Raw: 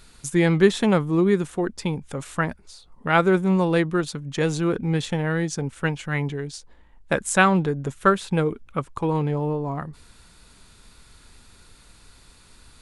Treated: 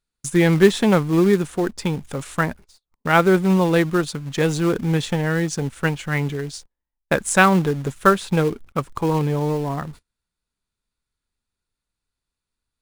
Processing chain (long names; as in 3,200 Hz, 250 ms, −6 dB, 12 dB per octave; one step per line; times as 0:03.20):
noise gate −41 dBFS, range −32 dB
in parallel at −5 dB: log-companded quantiser 4 bits
on the sum: level −1 dB